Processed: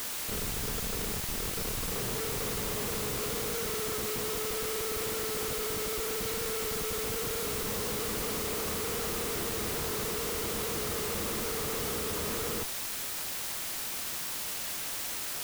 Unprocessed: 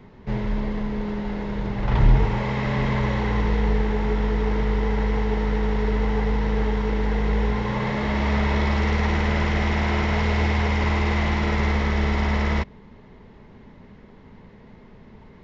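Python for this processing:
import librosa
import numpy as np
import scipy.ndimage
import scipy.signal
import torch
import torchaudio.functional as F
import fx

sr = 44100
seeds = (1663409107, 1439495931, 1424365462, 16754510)

y = fx.double_bandpass(x, sr, hz=750.0, octaves=1.4)
y = fx.schmitt(y, sr, flips_db=-36.5)
y = fx.quant_dither(y, sr, seeds[0], bits=6, dither='triangular')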